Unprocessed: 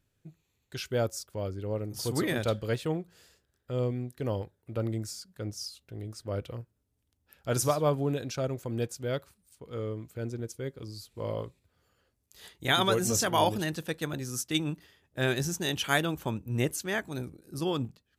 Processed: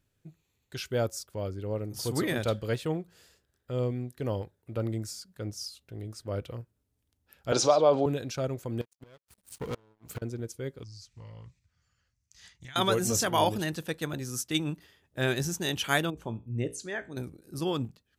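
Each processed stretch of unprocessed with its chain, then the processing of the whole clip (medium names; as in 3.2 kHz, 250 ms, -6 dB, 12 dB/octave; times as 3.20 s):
7.52–8.06 s: cabinet simulation 290–6000 Hz, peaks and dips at 560 Hz +6 dB, 790 Hz +5 dB, 1.8 kHz -7 dB, 4 kHz +6 dB + level flattener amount 50%
8.81–10.22 s: inverted gate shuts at -30 dBFS, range -34 dB + waveshaping leveller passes 5 + upward expansion, over -47 dBFS
10.83–12.76 s: FFT filter 140 Hz 0 dB, 390 Hz -19 dB, 2 kHz -1 dB, 3.7 kHz -6 dB, 6 kHz +5 dB, 12 kHz -18 dB + compression 10:1, threshold -42 dBFS + loudspeaker Doppler distortion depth 0.2 ms
16.10–17.17 s: resonances exaggerated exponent 1.5 + low-pass 9.8 kHz 24 dB/octave + feedback comb 58 Hz, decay 0.3 s
whole clip: none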